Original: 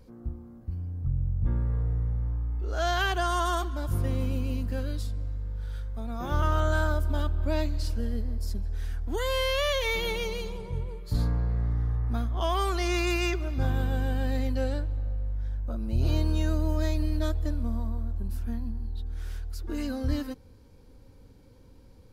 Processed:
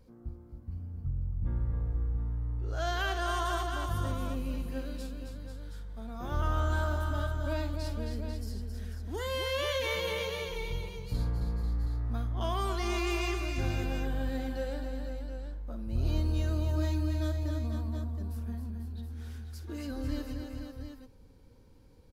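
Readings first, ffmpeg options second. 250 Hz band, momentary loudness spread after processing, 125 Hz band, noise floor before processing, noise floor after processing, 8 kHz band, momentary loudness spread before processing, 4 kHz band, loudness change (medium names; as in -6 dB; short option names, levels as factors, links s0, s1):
-4.0 dB, 12 LU, -4.0 dB, -52 dBFS, -54 dBFS, -4.0 dB, 10 LU, -4.0 dB, -4.5 dB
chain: -af "aecho=1:1:49|268|492|722:0.237|0.473|0.376|0.335,volume=0.501"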